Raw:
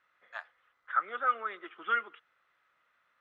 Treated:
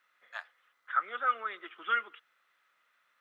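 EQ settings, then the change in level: HPF 170 Hz 12 dB/oct; high shelf 2200 Hz +10 dB; -3.0 dB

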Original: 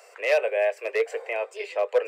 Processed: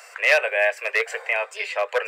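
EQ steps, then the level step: HPF 960 Hz 12 dB/oct; bell 1600 Hz +4.5 dB 0.58 oct; +8.5 dB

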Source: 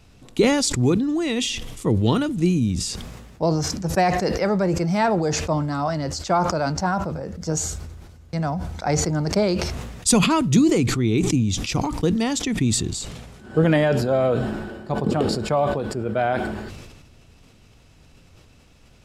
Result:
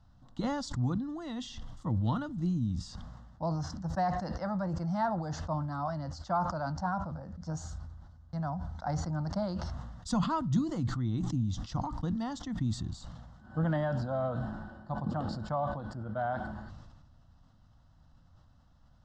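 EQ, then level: air absorption 180 m; fixed phaser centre 1000 Hz, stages 4; -7.5 dB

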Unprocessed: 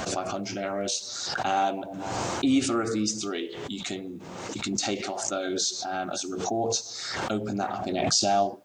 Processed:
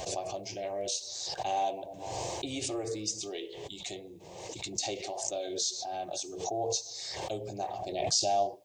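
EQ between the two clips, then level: fixed phaser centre 570 Hz, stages 4; -3.5 dB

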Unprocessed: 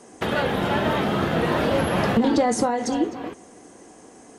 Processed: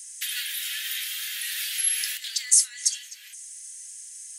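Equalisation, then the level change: steep high-pass 1700 Hz 48 dB/oct; differentiator; high shelf 5300 Hz +11 dB; +6.5 dB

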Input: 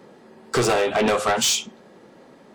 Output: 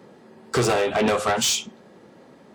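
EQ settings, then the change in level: HPF 65 Hz; low shelf 110 Hz +9 dB; -1.5 dB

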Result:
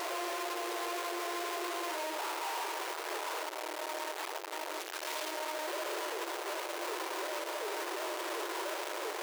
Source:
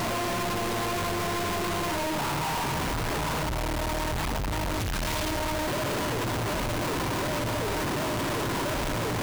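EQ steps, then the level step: brick-wall FIR high-pass 320 Hz; -7.0 dB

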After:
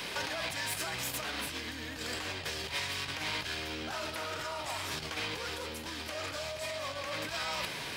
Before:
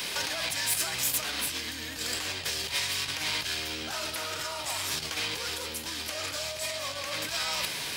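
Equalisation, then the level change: high shelf 3500 Hz -12 dB; 0.0 dB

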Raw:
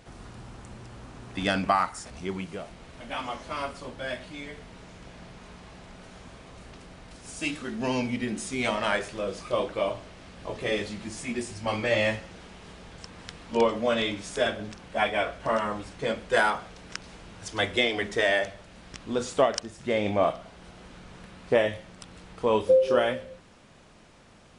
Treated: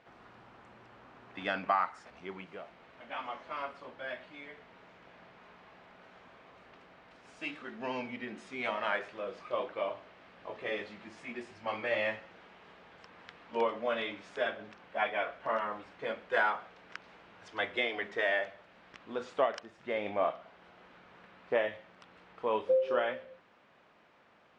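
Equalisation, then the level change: HPF 740 Hz 6 dB/oct; LPF 2300 Hz 12 dB/oct; -3.0 dB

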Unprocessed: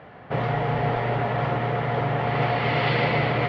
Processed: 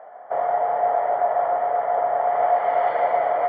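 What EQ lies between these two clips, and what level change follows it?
polynomial smoothing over 41 samples; resonant high-pass 670 Hz, resonance Q 5.2; air absorption 75 m; -4.0 dB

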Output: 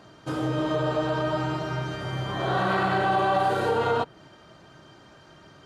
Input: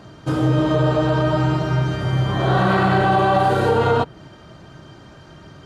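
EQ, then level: low shelf 220 Hz -10 dB; -5.0 dB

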